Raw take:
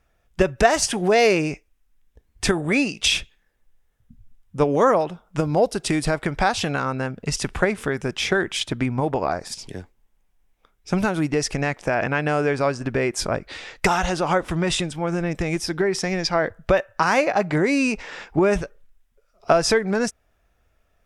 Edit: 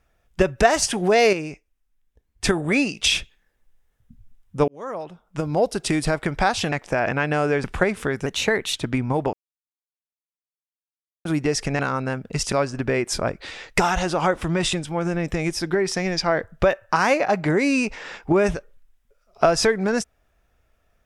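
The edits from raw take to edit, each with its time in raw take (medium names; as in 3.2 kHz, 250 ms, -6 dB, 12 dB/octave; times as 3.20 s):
1.33–2.44 s: gain -7 dB
4.68–5.78 s: fade in
6.72–7.45 s: swap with 11.67–12.59 s
8.07–8.63 s: speed 114%
9.21–11.13 s: mute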